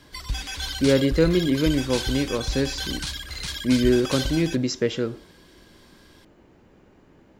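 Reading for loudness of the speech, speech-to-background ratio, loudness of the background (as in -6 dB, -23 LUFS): -23.5 LUFS, 7.0 dB, -30.5 LUFS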